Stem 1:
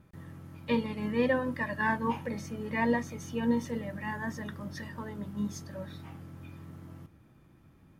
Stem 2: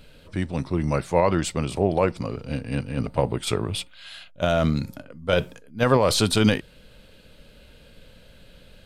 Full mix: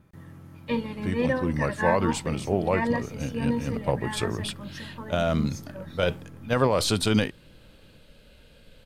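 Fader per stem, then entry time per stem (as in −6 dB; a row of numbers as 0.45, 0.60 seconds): +1.0, −3.5 decibels; 0.00, 0.70 seconds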